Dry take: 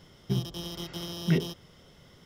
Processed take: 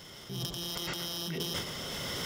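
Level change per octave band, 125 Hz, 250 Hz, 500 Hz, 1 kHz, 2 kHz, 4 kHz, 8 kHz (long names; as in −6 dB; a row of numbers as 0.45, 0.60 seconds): −9.5, −8.5, −3.5, +4.0, +3.0, +4.5, +7.0 decibels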